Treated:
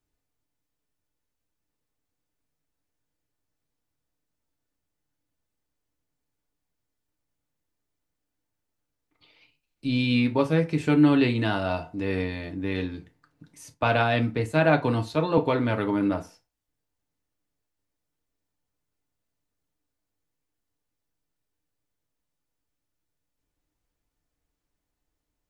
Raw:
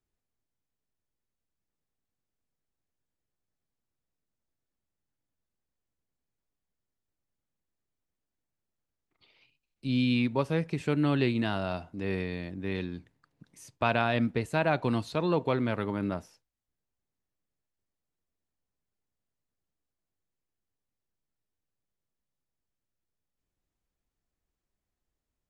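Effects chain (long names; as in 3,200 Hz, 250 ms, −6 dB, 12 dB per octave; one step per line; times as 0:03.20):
feedback delay network reverb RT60 0.3 s, low-frequency decay 0.85×, high-frequency decay 0.7×, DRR 4 dB
0:13.74–0:15.38: multiband upward and downward expander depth 40%
level +3.5 dB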